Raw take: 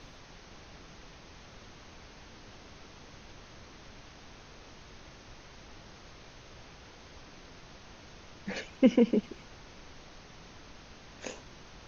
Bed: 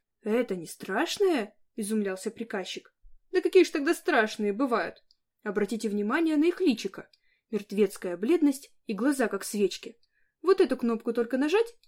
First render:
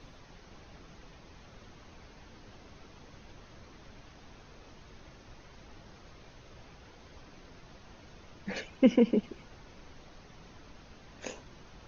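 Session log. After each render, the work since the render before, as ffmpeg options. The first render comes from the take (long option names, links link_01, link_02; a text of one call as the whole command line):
ffmpeg -i in.wav -af "afftdn=noise_reduction=6:noise_floor=-53" out.wav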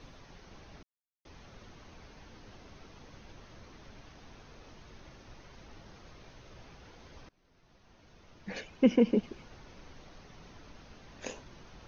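ffmpeg -i in.wav -filter_complex "[0:a]asplit=4[link_01][link_02][link_03][link_04];[link_01]atrim=end=0.83,asetpts=PTS-STARTPTS,afade=type=out:start_time=0.826:duration=0.004:curve=hsin[link_05];[link_02]atrim=start=0.83:end=1.25,asetpts=PTS-STARTPTS,volume=0[link_06];[link_03]atrim=start=1.25:end=7.29,asetpts=PTS-STARTPTS,afade=type=in:duration=0.004:curve=hsin,afade=type=out:start_time=6.036:duration=0.004:curve=hsin:silence=0.0630957[link_07];[link_04]atrim=start=7.29,asetpts=PTS-STARTPTS,afade=type=in:duration=1.86:silence=0.0630957[link_08];[link_05][link_06][link_07][link_08]concat=n=4:v=0:a=1" out.wav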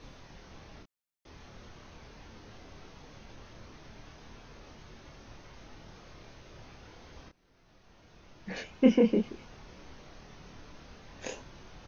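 ffmpeg -i in.wav -filter_complex "[0:a]asplit=2[link_01][link_02];[link_02]adelay=27,volume=-3dB[link_03];[link_01][link_03]amix=inputs=2:normalize=0" out.wav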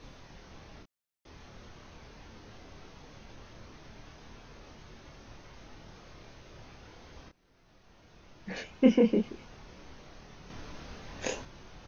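ffmpeg -i in.wav -filter_complex "[0:a]asplit=3[link_01][link_02][link_03];[link_01]atrim=end=10.502[link_04];[link_02]atrim=start=10.498:end=11.452,asetpts=PTS-STARTPTS,volume=5.5dB[link_05];[link_03]atrim=start=11.448[link_06];[link_04][link_05]acrossfade=duration=0.004:curve1=hsin:curve2=hsin[link_07];[link_07][link_06]acrossfade=duration=0.004:curve1=hsin:curve2=hsin" out.wav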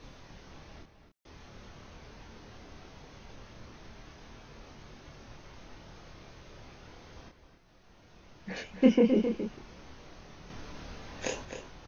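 ffmpeg -i in.wav -filter_complex "[0:a]asplit=2[link_01][link_02];[link_02]adelay=262.4,volume=-8dB,highshelf=frequency=4000:gain=-5.9[link_03];[link_01][link_03]amix=inputs=2:normalize=0" out.wav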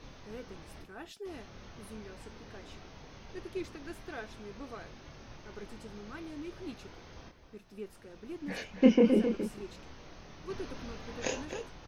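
ffmpeg -i in.wav -i bed.wav -filter_complex "[1:a]volume=-19dB[link_01];[0:a][link_01]amix=inputs=2:normalize=0" out.wav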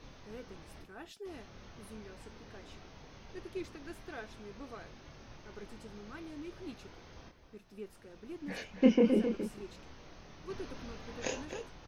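ffmpeg -i in.wav -af "volume=-2.5dB" out.wav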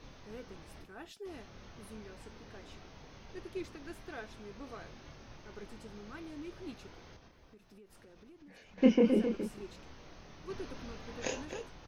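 ffmpeg -i in.wav -filter_complex "[0:a]asettb=1/sr,asplit=3[link_01][link_02][link_03];[link_01]atrim=end=4.644[link_04];[link_02]atrim=start=4.64:end=5.14,asetpts=PTS-STARTPTS,afade=type=in:duration=0.004:curve=qsin,afade=type=out:start_time=0.496:duration=0.004:curve=qsin,asplit=2[link_05][link_06];[link_06]adelay=27,volume=-12dB[link_07];[link_05][link_07]amix=inputs=2:normalize=0,atrim=end_sample=22050[link_08];[link_03]atrim=start=5.136[link_09];[link_04][link_08]acrossfade=duration=0.004:curve1=hsin:curve2=qsin[link_10];[link_10][link_09]acrossfade=duration=0.004:curve1=qsin:curve2=hsin,asettb=1/sr,asplit=3[link_11][link_12][link_13];[link_11]atrim=end=7.164[link_14];[link_12]atrim=start=7.16:end=8.78,asetpts=PTS-STARTPTS,afade=type=in:duration=0.004:curve=qsin,afade=type=out:start_time=1.616:duration=0.004:curve=qsin,acompressor=threshold=-53dB:ratio=10:attack=3.2:release=140:knee=1:detection=peak[link_15];[link_13]atrim=start=8.776[link_16];[link_14][link_15]acrossfade=duration=0.004:curve1=hsin:curve2=qsin[link_17];[link_17][link_16]acrossfade=duration=0.004:curve1=qsin:curve2=hsin" out.wav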